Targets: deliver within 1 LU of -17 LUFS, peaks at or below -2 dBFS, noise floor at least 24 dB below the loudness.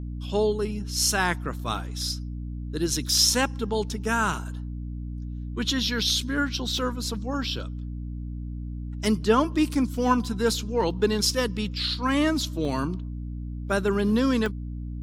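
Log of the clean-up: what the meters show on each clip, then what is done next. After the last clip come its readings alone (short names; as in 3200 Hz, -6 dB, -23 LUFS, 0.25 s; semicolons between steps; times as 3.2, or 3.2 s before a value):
dropouts 3; longest dropout 1.6 ms; hum 60 Hz; harmonics up to 300 Hz; hum level -31 dBFS; loudness -26.0 LUFS; peak -8.5 dBFS; loudness target -17.0 LUFS
-> interpolate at 6.78/12.65/14.46, 1.6 ms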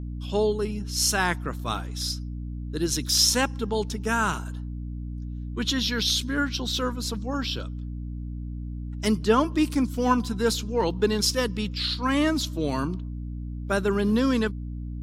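dropouts 0; hum 60 Hz; harmonics up to 300 Hz; hum level -31 dBFS
-> de-hum 60 Hz, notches 5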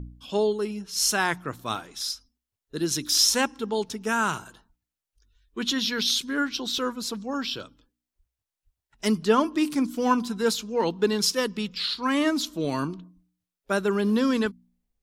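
hum none; loudness -25.5 LUFS; peak -8.0 dBFS; loudness target -17.0 LUFS
-> gain +8.5 dB; limiter -2 dBFS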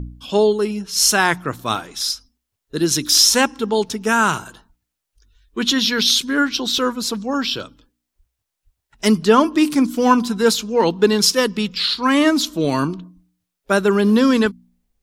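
loudness -17.5 LUFS; peak -2.0 dBFS; noise floor -80 dBFS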